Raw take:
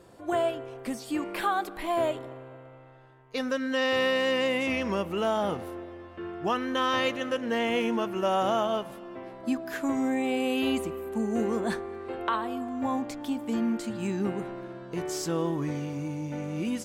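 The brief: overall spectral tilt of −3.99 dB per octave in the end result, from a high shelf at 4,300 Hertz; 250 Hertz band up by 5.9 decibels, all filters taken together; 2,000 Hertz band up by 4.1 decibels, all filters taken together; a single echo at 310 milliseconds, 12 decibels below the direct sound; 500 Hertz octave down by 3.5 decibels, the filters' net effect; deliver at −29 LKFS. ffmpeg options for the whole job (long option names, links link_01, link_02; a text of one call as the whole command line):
ffmpeg -i in.wav -af "equalizer=frequency=250:width_type=o:gain=8.5,equalizer=frequency=500:width_type=o:gain=-7.5,equalizer=frequency=2000:width_type=o:gain=6,highshelf=frequency=4300:gain=-4.5,aecho=1:1:310:0.251,volume=-2.5dB" out.wav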